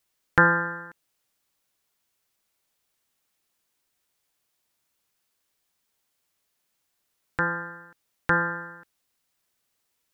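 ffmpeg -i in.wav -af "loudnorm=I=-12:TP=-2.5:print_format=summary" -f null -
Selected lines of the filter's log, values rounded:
Input Integrated:    -25.9 LUFS
Input True Peak:      -2.4 dBTP
Input LRA:             3.0 LU
Input Threshold:     -37.5 LUFS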